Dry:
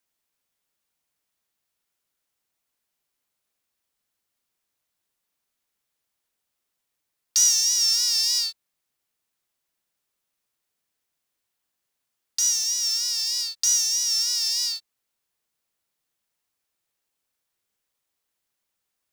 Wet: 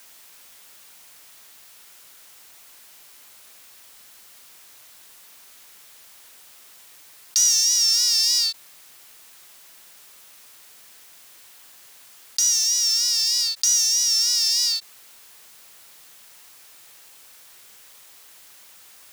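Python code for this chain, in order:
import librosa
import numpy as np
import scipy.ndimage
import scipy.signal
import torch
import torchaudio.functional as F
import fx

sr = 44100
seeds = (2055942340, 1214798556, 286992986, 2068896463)

y = fx.low_shelf(x, sr, hz=480.0, db=-9.0)
y = fx.env_flatten(y, sr, amount_pct=50)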